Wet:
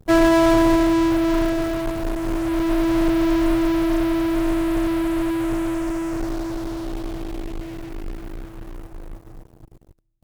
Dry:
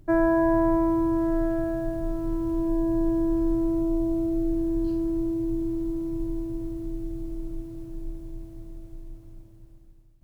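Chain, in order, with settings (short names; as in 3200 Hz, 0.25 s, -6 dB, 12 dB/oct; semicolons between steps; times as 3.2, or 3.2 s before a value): in parallel at -10.5 dB: fuzz box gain 52 dB, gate -47 dBFS; on the sum: upward expander 2.5:1, over -28 dBFS; gain +3 dB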